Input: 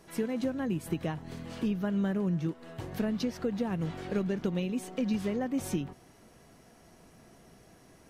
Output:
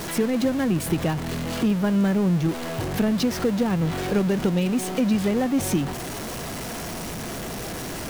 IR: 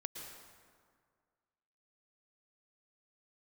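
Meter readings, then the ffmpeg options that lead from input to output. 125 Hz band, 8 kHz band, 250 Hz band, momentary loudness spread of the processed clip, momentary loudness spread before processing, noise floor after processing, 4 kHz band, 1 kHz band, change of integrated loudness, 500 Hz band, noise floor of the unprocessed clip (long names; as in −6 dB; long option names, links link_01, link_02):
+10.0 dB, +15.5 dB, +9.5 dB, 10 LU, 7 LU, −32 dBFS, +13.5 dB, +12.0 dB, +8.5 dB, +9.0 dB, −58 dBFS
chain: -af "aeval=exprs='val(0)+0.5*0.02*sgn(val(0))':channel_layout=same,volume=7dB"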